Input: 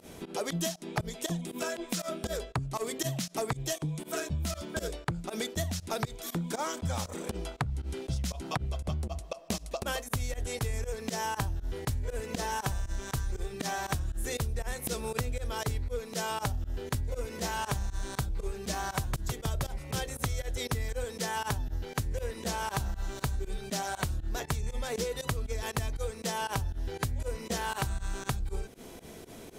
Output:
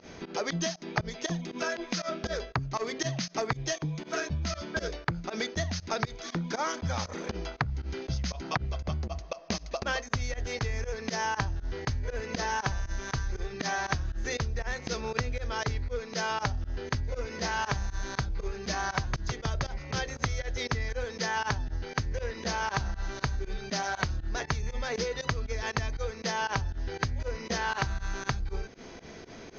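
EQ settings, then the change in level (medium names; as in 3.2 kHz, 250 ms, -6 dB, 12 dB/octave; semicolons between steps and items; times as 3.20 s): rippled Chebyshev low-pass 6.5 kHz, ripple 6 dB; +6.5 dB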